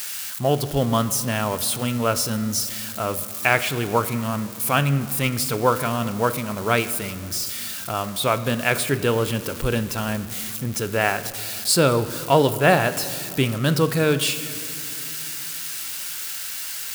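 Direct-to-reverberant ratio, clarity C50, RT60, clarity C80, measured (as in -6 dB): 12.0 dB, 13.5 dB, 2.7 s, 14.5 dB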